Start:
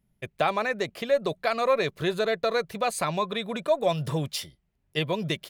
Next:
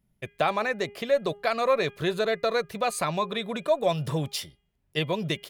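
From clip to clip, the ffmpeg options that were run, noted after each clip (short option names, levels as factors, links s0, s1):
-af "bandreject=f=407.8:t=h:w=4,bandreject=f=815.6:t=h:w=4,bandreject=f=1223.4:t=h:w=4,bandreject=f=1631.2:t=h:w=4,bandreject=f=2039:t=h:w=4,bandreject=f=2446.8:t=h:w=4,bandreject=f=2854.6:t=h:w=4,bandreject=f=3262.4:t=h:w=4"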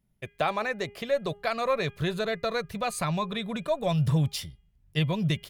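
-af "asubboost=boost=6:cutoff=160,volume=0.794"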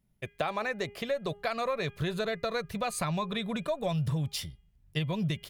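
-af "acompressor=threshold=0.0447:ratio=6"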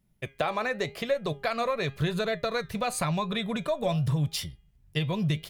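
-af "flanger=delay=5.4:depth=3.5:regen=81:speed=0.9:shape=triangular,volume=2.37"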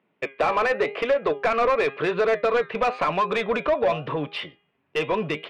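-filter_complex "[0:a]highpass=270,equalizer=f=290:t=q:w=4:g=7,equalizer=f=450:t=q:w=4:g=7,equalizer=f=1100:t=q:w=4:g=4,equalizer=f=2600:t=q:w=4:g=5,lowpass=f=3100:w=0.5412,lowpass=f=3100:w=1.3066,asplit=2[s0][s1];[s1]highpass=f=720:p=1,volume=10,asoftclip=type=tanh:threshold=0.266[s2];[s0][s2]amix=inputs=2:normalize=0,lowpass=f=1600:p=1,volume=0.501"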